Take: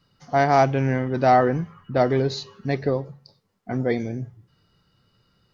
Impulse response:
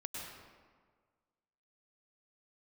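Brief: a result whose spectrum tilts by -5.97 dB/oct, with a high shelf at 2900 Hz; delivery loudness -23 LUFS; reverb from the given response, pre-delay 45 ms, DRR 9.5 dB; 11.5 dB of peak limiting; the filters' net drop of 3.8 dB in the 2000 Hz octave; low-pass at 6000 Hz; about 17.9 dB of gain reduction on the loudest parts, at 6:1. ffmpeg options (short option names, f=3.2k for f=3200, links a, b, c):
-filter_complex "[0:a]lowpass=6k,equalizer=f=2k:t=o:g=-7.5,highshelf=f=2.9k:g=7.5,acompressor=threshold=-33dB:ratio=6,alimiter=level_in=8.5dB:limit=-24dB:level=0:latency=1,volume=-8.5dB,asplit=2[a][b];[1:a]atrim=start_sample=2205,adelay=45[c];[b][c]afir=irnorm=-1:irlink=0,volume=-9dB[d];[a][d]amix=inputs=2:normalize=0,volume=18.5dB"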